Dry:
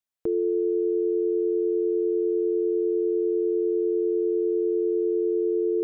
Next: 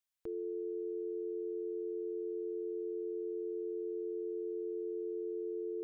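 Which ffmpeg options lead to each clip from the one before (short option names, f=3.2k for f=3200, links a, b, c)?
-af "equalizer=f=260:w=0.33:g=-10.5,alimiter=level_in=9dB:limit=-24dB:level=0:latency=1:release=157,volume=-9dB"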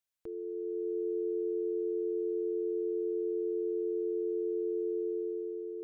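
-af "dynaudnorm=f=110:g=13:m=7dB,volume=-1dB"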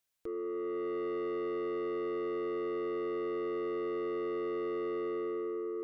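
-af "asoftclip=type=tanh:threshold=-39dB,volume=6dB"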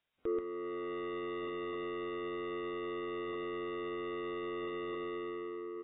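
-filter_complex "[0:a]asplit=2[a][b];[b]aecho=0:1:133:0.708[c];[a][c]amix=inputs=2:normalize=0,volume=4.5dB" -ar 16000 -c:a aac -b:a 16k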